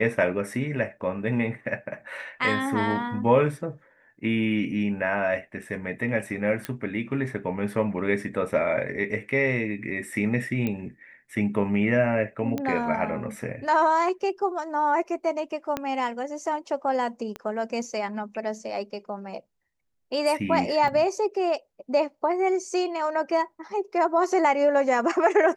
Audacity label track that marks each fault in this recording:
6.650000	6.650000	click −14 dBFS
10.670000	10.670000	click −16 dBFS
12.580000	12.580000	click −16 dBFS
15.770000	15.770000	click −13 dBFS
17.360000	17.360000	click −20 dBFS
20.880000	20.880000	drop-out 2.2 ms

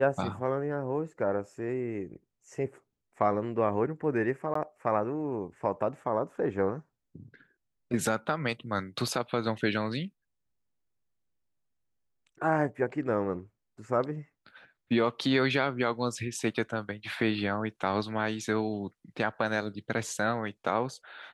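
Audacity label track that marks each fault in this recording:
4.540000	4.550000	drop-out 14 ms

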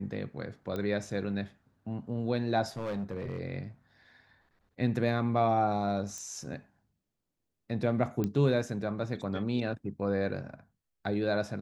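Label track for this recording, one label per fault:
0.760000	0.760000	click −23 dBFS
2.770000	3.390000	clipping −30.5 dBFS
6.180000	6.180000	click
8.240000	8.240000	click −19 dBFS

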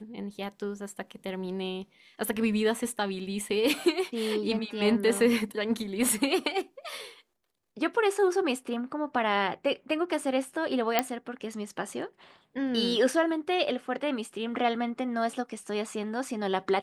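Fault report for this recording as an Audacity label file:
10.990000	10.990000	click −8 dBFS

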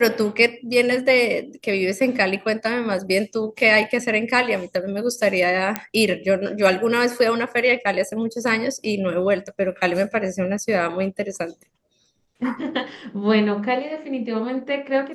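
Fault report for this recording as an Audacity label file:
5.760000	5.760000	click −6 dBFS

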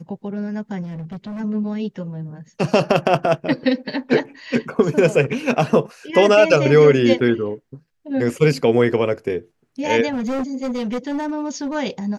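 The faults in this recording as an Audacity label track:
0.820000	1.410000	clipping −27.5 dBFS
10.120000	11.760000	clipping −20 dBFS

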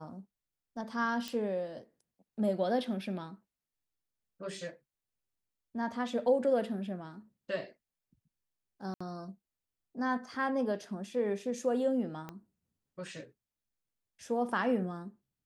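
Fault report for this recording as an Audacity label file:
1.280000	1.280000	click −23 dBFS
8.940000	9.010000	drop-out 65 ms
12.290000	12.290000	click −27 dBFS

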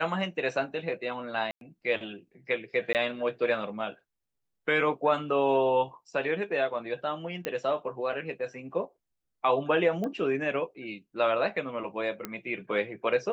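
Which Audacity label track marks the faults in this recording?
1.510000	1.610000	drop-out 102 ms
2.930000	2.950000	drop-out 18 ms
7.450000	7.450000	click −17 dBFS
10.040000	10.040000	click −22 dBFS
12.250000	12.250000	click −17 dBFS

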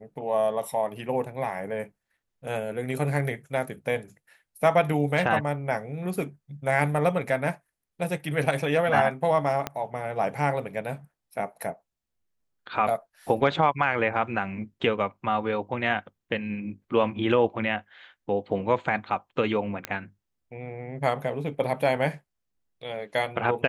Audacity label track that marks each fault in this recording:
9.670000	9.670000	click −13 dBFS
19.850000	19.850000	click −13 dBFS

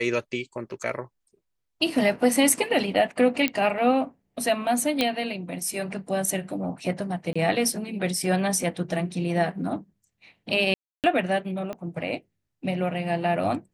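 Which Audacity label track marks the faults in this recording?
3.480000	3.480000	click −9 dBFS
5.010000	5.010000	click −8 dBFS
7.330000	7.360000	drop-out 25 ms
10.740000	11.040000	drop-out 298 ms
11.730000	11.730000	click −21 dBFS

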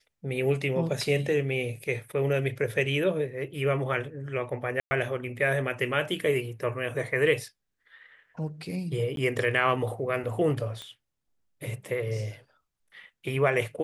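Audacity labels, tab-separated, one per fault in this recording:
4.800000	4.910000	drop-out 110 ms
9.160000	9.170000	drop-out 12 ms
10.820000	10.820000	click −24 dBFS

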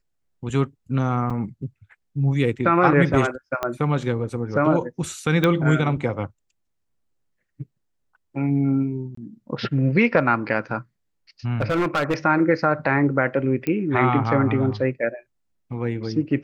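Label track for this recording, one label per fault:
1.300000	1.300000	drop-out 4.9 ms
3.630000	3.630000	click −11 dBFS
5.440000	5.440000	click −8 dBFS
9.150000	9.170000	drop-out 24 ms
11.550000	12.140000	clipping −17 dBFS
13.670000	13.670000	click −13 dBFS

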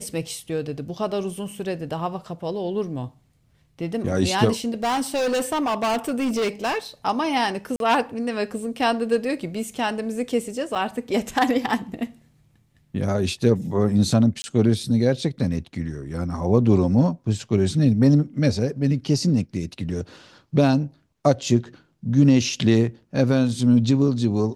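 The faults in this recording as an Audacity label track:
4.830000	6.780000	clipping −19.5 dBFS
7.760000	7.800000	drop-out 42 ms
10.750000	10.760000	drop-out 7.1 ms
14.420000	14.440000	drop-out 20 ms

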